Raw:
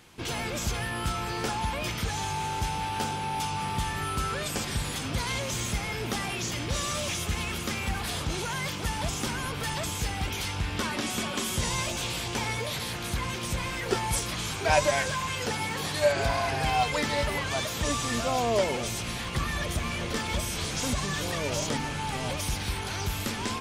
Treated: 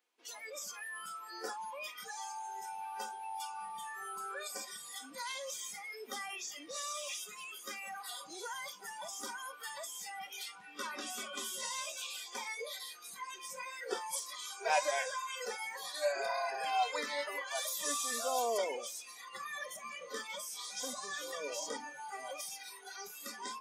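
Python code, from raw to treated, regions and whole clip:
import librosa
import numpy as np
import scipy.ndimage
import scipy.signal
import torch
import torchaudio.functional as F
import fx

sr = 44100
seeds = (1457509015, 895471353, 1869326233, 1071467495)

y = fx.chain(x, sr, fx.highpass(hz=56.0, slope=12),
    fx.peak_eq(hz=12000.0, db=11.0, octaves=1.2), at=(17.55, 18.58))
y = scipy.signal.sosfilt(scipy.signal.butter(4, 350.0, 'highpass', fs=sr, output='sos'), y)
y = fx.noise_reduce_blind(y, sr, reduce_db=20)
y = y + 0.32 * np.pad(y, (int(4.1 * sr / 1000.0), 0))[:len(y)]
y = F.gain(torch.from_numpy(y), -7.5).numpy()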